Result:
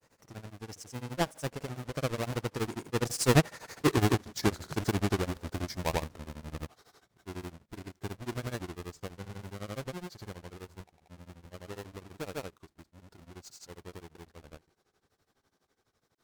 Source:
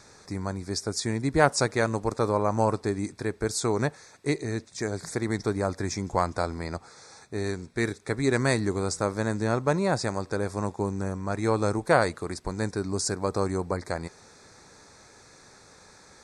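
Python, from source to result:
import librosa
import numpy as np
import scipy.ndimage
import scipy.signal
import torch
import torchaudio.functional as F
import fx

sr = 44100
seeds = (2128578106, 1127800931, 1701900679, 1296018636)

y = fx.halfwave_hold(x, sr)
y = fx.doppler_pass(y, sr, speed_mps=36, closest_m=14.0, pass_at_s=3.86)
y = fx.granulator(y, sr, seeds[0], grain_ms=100.0, per_s=12.0, spray_ms=100.0, spread_st=0)
y = F.gain(torch.from_numpy(y), 5.0).numpy()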